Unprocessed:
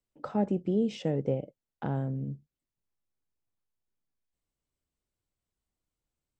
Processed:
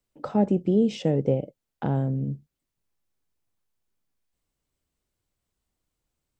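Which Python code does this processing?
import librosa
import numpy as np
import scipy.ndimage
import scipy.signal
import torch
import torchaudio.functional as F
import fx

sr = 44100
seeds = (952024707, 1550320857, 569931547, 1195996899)

y = fx.dynamic_eq(x, sr, hz=1500.0, q=0.99, threshold_db=-51.0, ratio=4.0, max_db=-4)
y = y * 10.0 ** (6.5 / 20.0)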